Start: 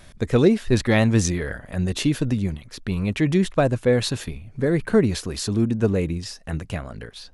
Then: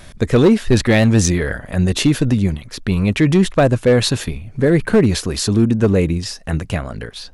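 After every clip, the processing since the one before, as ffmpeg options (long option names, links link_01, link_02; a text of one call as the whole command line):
ffmpeg -i in.wav -filter_complex "[0:a]asplit=2[link_01][link_02];[link_02]alimiter=limit=-13.5dB:level=0:latency=1:release=57,volume=-3dB[link_03];[link_01][link_03]amix=inputs=2:normalize=0,volume=9dB,asoftclip=hard,volume=-9dB,volume=3dB" out.wav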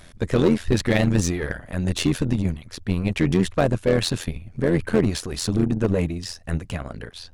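ffmpeg -i in.wav -af "tremolo=f=86:d=0.75,aeval=exprs='0.531*(cos(1*acos(clip(val(0)/0.531,-1,1)))-cos(1*PI/2))+0.0211*(cos(8*acos(clip(val(0)/0.531,-1,1)))-cos(8*PI/2))':channel_layout=same,volume=-3.5dB" out.wav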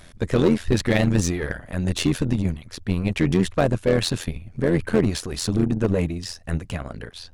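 ffmpeg -i in.wav -af anull out.wav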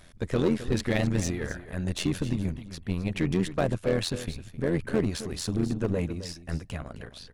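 ffmpeg -i in.wav -af "aecho=1:1:263:0.211,volume=-6.5dB" out.wav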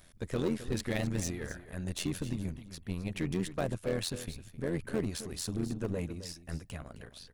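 ffmpeg -i in.wav -af "highshelf=frequency=8700:gain=11.5,volume=-7dB" out.wav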